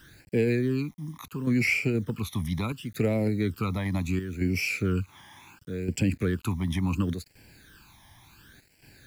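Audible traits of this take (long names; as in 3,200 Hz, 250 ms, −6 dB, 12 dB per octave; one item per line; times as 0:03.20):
chopped level 0.68 Hz, depth 60%, duty 85%
a quantiser's noise floor 10 bits, dither none
phaser sweep stages 12, 0.71 Hz, lowest notch 450–1,200 Hz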